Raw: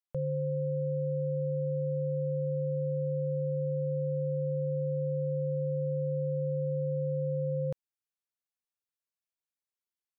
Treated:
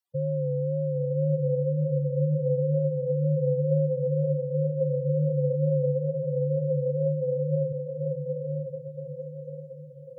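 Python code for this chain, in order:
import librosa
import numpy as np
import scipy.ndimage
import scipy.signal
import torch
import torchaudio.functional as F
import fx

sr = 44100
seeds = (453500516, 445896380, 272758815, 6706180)

y = fx.spec_expand(x, sr, power=4.0)
y = fx.wow_flutter(y, sr, seeds[0], rate_hz=2.1, depth_cents=66.0)
y = fx.echo_diffused(y, sr, ms=1021, feedback_pct=44, wet_db=-4)
y = y * 10.0 ** (5.0 / 20.0)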